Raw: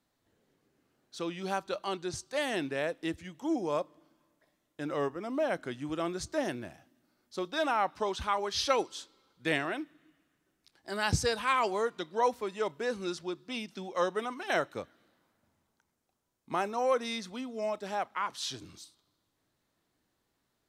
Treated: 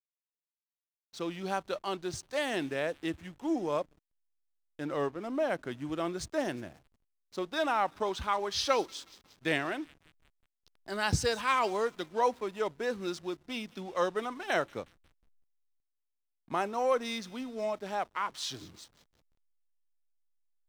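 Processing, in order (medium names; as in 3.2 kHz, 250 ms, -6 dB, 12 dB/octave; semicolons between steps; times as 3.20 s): feedback echo behind a high-pass 180 ms, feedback 70%, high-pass 3.6 kHz, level -13.5 dB; hysteresis with a dead band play -46.5 dBFS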